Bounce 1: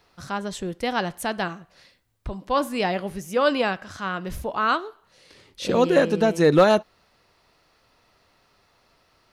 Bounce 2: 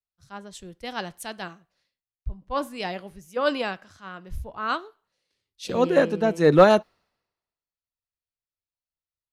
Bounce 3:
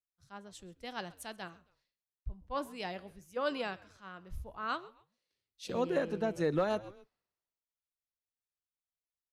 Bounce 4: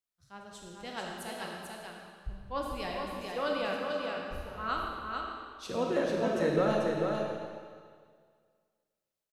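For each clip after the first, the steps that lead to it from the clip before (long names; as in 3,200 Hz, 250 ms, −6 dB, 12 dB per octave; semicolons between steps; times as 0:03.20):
multiband upward and downward expander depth 100%; level −5.5 dB
echo with shifted repeats 133 ms, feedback 33%, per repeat −100 Hz, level −22 dB; downward compressor 6 to 1, threshold −18 dBFS, peak gain reduction 9.5 dB; level −9 dB
single-tap delay 442 ms −4 dB; comb and all-pass reverb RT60 1.9 s, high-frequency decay 0.95×, pre-delay 0 ms, DRR −0.5 dB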